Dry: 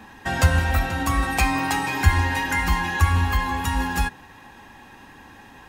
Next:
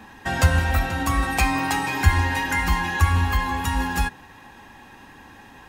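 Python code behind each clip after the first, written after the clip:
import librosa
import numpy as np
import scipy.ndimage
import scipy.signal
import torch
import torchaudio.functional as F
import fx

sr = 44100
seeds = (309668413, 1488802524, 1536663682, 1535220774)

y = x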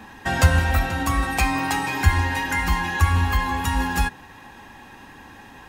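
y = fx.rider(x, sr, range_db=4, speed_s=2.0)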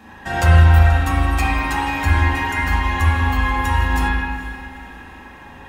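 y = fx.echo_diffused(x, sr, ms=454, feedback_pct=47, wet_db=-15.5)
y = fx.rev_spring(y, sr, rt60_s=1.5, pass_ms=(37, 50), chirp_ms=70, drr_db=-6.5)
y = y * 10.0 ** (-4.0 / 20.0)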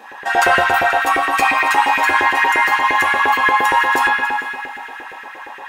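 y = x + 10.0 ** (-14.0 / 20.0) * np.pad(x, (int(276 * sr / 1000.0), 0))[:len(x)]
y = fx.filter_lfo_highpass(y, sr, shape='saw_up', hz=8.6, low_hz=390.0, high_hz=2000.0, q=2.3)
y = y * 10.0 ** (4.5 / 20.0)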